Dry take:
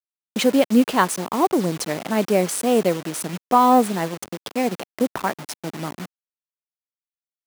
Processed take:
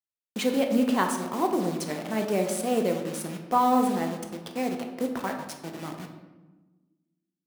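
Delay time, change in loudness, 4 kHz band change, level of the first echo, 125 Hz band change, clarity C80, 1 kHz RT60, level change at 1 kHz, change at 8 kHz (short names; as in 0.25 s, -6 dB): none, -6.5 dB, -7.5 dB, none, -6.5 dB, 9.0 dB, 1.1 s, -6.5 dB, -8.0 dB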